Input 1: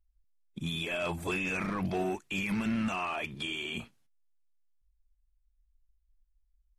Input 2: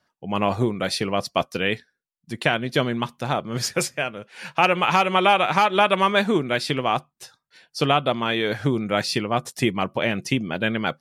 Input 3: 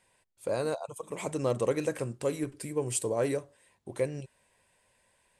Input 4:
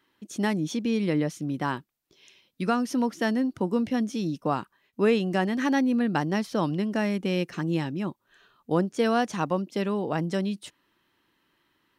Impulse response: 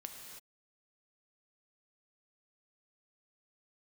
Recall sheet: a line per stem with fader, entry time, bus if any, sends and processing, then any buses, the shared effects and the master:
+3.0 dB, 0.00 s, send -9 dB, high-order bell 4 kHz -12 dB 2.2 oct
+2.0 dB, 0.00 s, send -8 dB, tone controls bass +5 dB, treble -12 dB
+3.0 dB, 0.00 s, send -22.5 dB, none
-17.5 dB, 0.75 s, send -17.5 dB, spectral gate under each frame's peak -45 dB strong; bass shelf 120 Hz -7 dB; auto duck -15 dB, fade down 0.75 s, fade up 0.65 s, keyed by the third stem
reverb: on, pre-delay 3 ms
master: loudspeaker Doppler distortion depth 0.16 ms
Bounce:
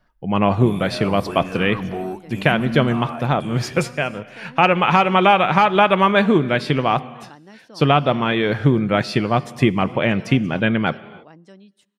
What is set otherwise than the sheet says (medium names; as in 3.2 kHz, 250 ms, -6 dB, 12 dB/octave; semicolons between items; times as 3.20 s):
stem 3: muted; stem 4: entry 0.75 s -> 1.15 s; master: missing loudspeaker Doppler distortion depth 0.16 ms